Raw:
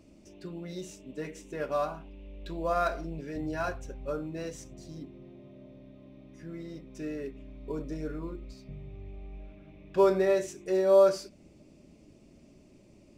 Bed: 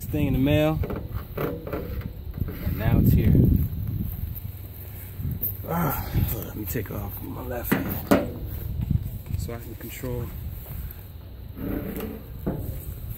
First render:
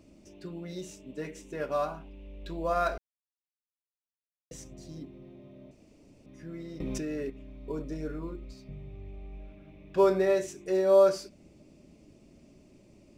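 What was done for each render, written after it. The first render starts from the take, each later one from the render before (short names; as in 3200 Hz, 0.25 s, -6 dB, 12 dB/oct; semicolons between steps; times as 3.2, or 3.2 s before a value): 2.98–4.51 mute; 5.71–6.26 room tone; 6.8–7.3 fast leveller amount 100%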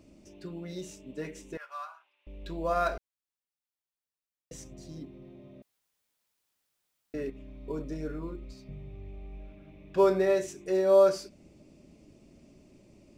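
1.57–2.27 ladder high-pass 990 Hz, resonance 40%; 5.62–7.14 room tone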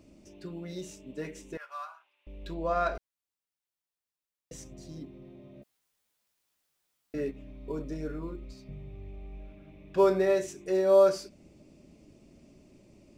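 2.54–2.95 air absorption 89 m; 5.54–7.51 doubler 14 ms -5 dB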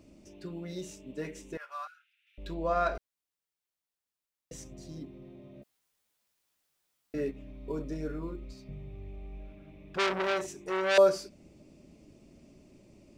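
1.87–2.38 brick-wall FIR high-pass 1300 Hz; 9.94–10.98 core saturation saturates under 3000 Hz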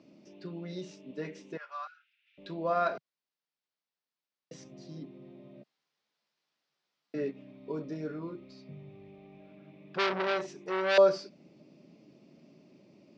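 Chebyshev band-pass 150–5000 Hz, order 3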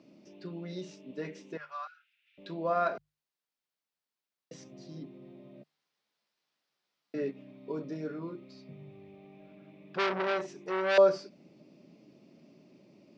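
notches 50/100/150 Hz; dynamic EQ 4200 Hz, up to -4 dB, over -48 dBFS, Q 1.1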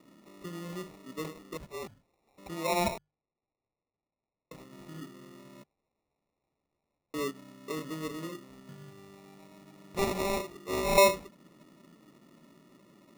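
sample-and-hold 28×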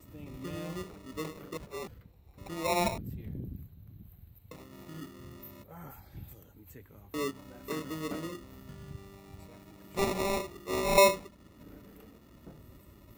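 add bed -22.5 dB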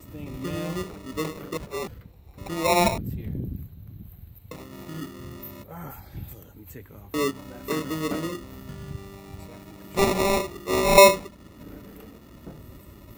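gain +8.5 dB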